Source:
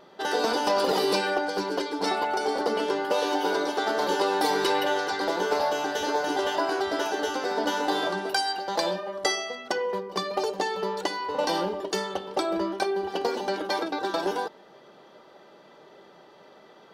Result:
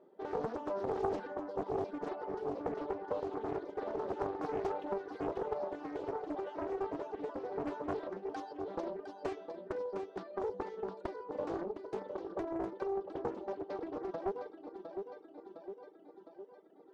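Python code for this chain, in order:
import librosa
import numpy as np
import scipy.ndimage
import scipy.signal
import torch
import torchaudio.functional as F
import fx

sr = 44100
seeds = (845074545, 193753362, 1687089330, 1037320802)

y = fx.bandpass_q(x, sr, hz=360.0, q=1.6)
y = fx.echo_feedback(y, sr, ms=709, feedback_pct=58, wet_db=-6.5)
y = fx.dereverb_blind(y, sr, rt60_s=1.7)
y = fx.doppler_dist(y, sr, depth_ms=0.73)
y = y * 10.0 ** (-5.0 / 20.0)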